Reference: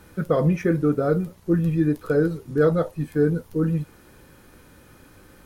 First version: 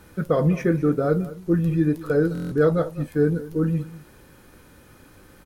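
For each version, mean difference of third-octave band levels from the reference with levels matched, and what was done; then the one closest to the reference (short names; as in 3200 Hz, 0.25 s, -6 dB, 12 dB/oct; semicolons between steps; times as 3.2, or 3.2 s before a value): 1.0 dB: on a send: echo 0.203 s -17 dB; on the sum: stuck buffer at 2.33, samples 1024, times 7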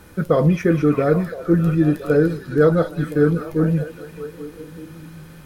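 3.0 dB: on a send: delay with a stepping band-pass 0.203 s, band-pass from 3700 Hz, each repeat -0.7 oct, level -1.5 dB; on the sum: gain +4 dB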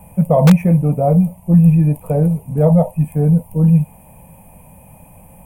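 6.5 dB: EQ curve 110 Hz 0 dB, 180 Hz +6 dB, 360 Hz -19 dB, 640 Hz +6 dB, 960 Hz +4 dB, 1400 Hz -27 dB, 2500 Hz -2 dB, 4100 Hz -29 dB, 6200 Hz -18 dB, 8900 Hz +3 dB; in parallel at -7 dB: wrapped overs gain 9.5 dB; on the sum: gain +5 dB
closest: first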